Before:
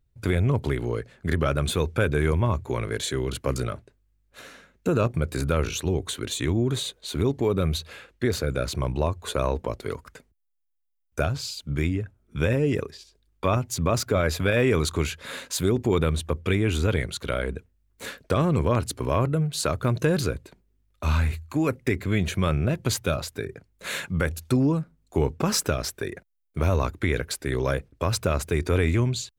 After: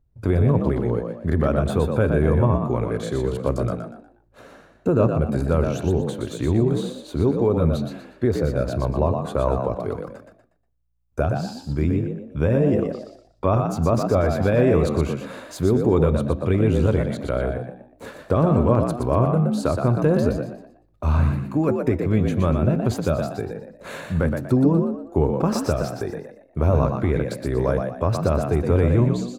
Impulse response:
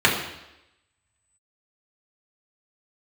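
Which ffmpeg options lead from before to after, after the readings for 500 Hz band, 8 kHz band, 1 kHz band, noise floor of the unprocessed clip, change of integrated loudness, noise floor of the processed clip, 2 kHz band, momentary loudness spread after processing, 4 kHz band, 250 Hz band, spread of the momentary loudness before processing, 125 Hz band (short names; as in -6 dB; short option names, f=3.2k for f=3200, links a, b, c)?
+5.0 dB, -9.0 dB, +3.5 dB, -67 dBFS, +4.0 dB, -57 dBFS, -4.0 dB, 10 LU, -8.5 dB, +5.5 dB, 9 LU, +4.5 dB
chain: -filter_complex "[0:a]firequalizer=gain_entry='entry(790,0);entry(2000,-12);entry(6600,-14)':delay=0.05:min_phase=1,asplit=5[a][b][c][d][e];[b]adelay=120,afreqshift=59,volume=-5.5dB[f];[c]adelay=240,afreqshift=118,volume=-15.4dB[g];[d]adelay=360,afreqshift=177,volume=-25.3dB[h];[e]adelay=480,afreqshift=236,volume=-35.2dB[i];[a][f][g][h][i]amix=inputs=5:normalize=0,asplit=2[j][k];[1:a]atrim=start_sample=2205,asetrate=66150,aresample=44100[l];[k][l]afir=irnorm=-1:irlink=0,volume=-31.5dB[m];[j][m]amix=inputs=2:normalize=0,volume=3.5dB"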